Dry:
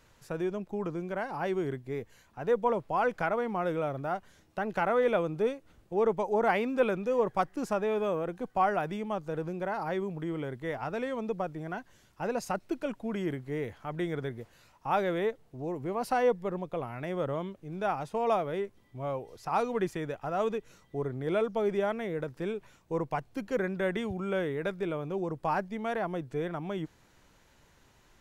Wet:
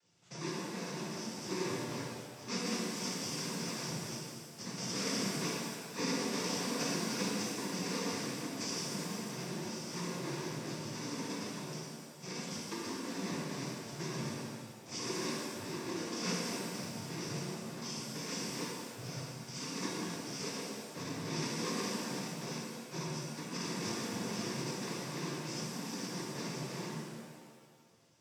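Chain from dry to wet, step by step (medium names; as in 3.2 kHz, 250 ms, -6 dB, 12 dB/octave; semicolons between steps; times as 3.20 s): bit-reversed sample order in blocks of 64 samples; noise-vocoded speech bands 16; pitch-shifted reverb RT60 1.8 s, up +7 st, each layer -8 dB, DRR -5 dB; trim -8 dB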